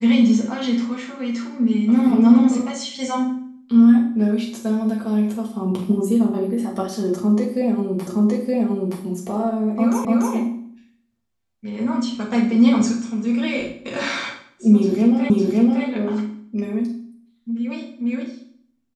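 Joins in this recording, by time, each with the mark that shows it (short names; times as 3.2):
8.07 repeat of the last 0.92 s
10.05 repeat of the last 0.29 s
15.3 repeat of the last 0.56 s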